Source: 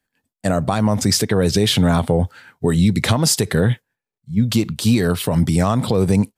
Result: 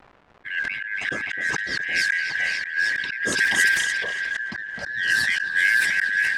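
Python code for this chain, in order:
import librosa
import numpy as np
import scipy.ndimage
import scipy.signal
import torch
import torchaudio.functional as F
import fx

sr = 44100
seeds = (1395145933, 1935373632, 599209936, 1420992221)

p1 = fx.band_shuffle(x, sr, order='4123')
p2 = fx.rider(p1, sr, range_db=5, speed_s=2.0)
p3 = p2 + fx.echo_alternate(p2, sr, ms=256, hz=1700.0, feedback_pct=66, wet_db=-7, dry=0)
p4 = fx.dynamic_eq(p3, sr, hz=1100.0, q=1.1, threshold_db=-28.0, ratio=4.0, max_db=-4)
p5 = scipy.signal.sosfilt(scipy.signal.butter(2, 90.0, 'highpass', fs=sr, output='sos'), p4)
p6 = fx.high_shelf(p5, sr, hz=7900.0, db=-7.5)
p7 = fx.env_flanger(p6, sr, rest_ms=2.9, full_db=-11.0)
p8 = fx.echo_wet_highpass(p7, sr, ms=287, feedback_pct=62, hz=2400.0, wet_db=-3)
p9 = fx.dmg_crackle(p8, sr, seeds[0], per_s=490.0, level_db=-29.0)
p10 = fx.auto_swell(p9, sr, attack_ms=265.0)
p11 = fx.env_lowpass(p10, sr, base_hz=1300.0, full_db=-16.5)
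y = fx.sustainer(p11, sr, db_per_s=34.0)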